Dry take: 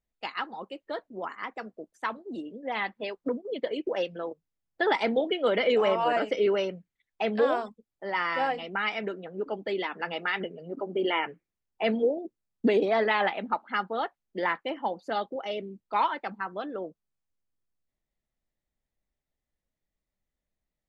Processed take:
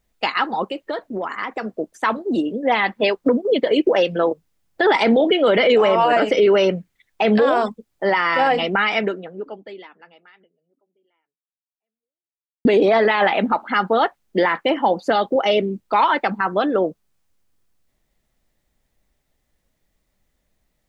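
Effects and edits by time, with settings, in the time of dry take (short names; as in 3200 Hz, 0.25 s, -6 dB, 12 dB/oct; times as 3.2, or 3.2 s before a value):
0.68–1.73 compressor, threshold -38 dBFS
8.86–12.65 fade out exponential
whole clip: maximiser +23.5 dB; gain -7 dB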